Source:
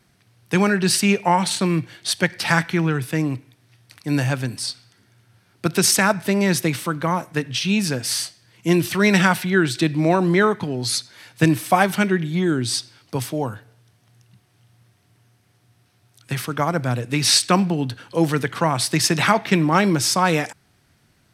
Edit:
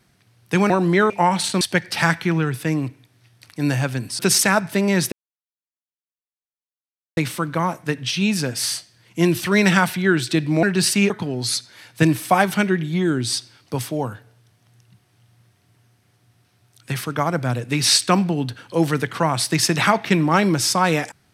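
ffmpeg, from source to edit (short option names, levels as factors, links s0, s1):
-filter_complex "[0:a]asplit=8[s0][s1][s2][s3][s4][s5][s6][s7];[s0]atrim=end=0.702[s8];[s1]atrim=start=10.108:end=10.512[s9];[s2]atrim=start=1.168:end=1.682[s10];[s3]atrim=start=2.088:end=4.672[s11];[s4]atrim=start=5.718:end=6.65,asetpts=PTS-STARTPTS,afade=t=out:st=0.928:d=0.004:c=hsin,apad=pad_dur=2.05[s12];[s5]atrim=start=6.65:end=10.112,asetpts=PTS-STARTPTS,afade=t=in:d=0.004:c=hsin[s13];[s6]atrim=start=0.698:end=1.172[s14];[s7]atrim=start=10.508[s15];[s8][s9]acrossfade=d=0.004:c1=hsin:c2=hsin[s16];[s16][s10]acrossfade=d=0.004:c1=hsin:c2=hsin[s17];[s17][s11]acrossfade=d=0.004:c1=hsin:c2=hsin[s18];[s12][s13]concat=n=2:v=0:a=1[s19];[s18][s19]acrossfade=d=0.004:c1=hsin:c2=hsin[s20];[s20][s14]acrossfade=d=0.004:c1=hsin:c2=hsin[s21];[s21][s15]acrossfade=d=0.004:c1=hsin:c2=hsin"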